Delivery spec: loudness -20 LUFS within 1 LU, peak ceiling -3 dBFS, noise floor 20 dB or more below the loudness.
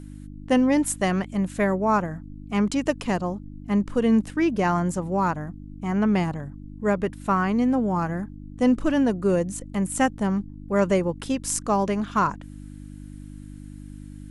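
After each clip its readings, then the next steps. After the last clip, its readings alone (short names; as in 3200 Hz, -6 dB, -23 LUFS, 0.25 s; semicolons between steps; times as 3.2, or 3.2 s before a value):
hum 50 Hz; harmonics up to 300 Hz; hum level -39 dBFS; loudness -24.0 LUFS; peak -8.5 dBFS; loudness target -20.0 LUFS
-> de-hum 50 Hz, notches 6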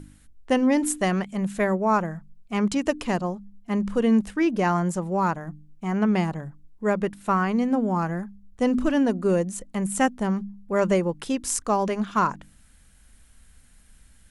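hum none; loudness -24.5 LUFS; peak -8.5 dBFS; loudness target -20.0 LUFS
-> gain +4.5 dB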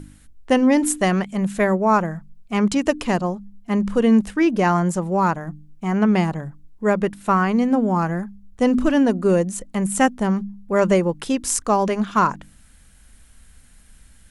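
loudness -20.0 LUFS; peak -4.0 dBFS; noise floor -50 dBFS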